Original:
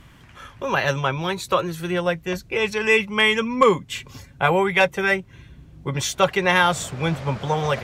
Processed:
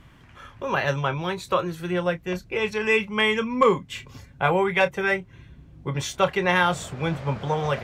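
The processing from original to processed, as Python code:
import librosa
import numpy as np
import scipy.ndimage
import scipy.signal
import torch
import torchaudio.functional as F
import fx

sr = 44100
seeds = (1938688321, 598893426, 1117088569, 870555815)

y = fx.high_shelf(x, sr, hz=3900.0, db=-6.5)
y = fx.doubler(y, sr, ms=28.0, db=-12.5)
y = y * 10.0 ** (-2.5 / 20.0)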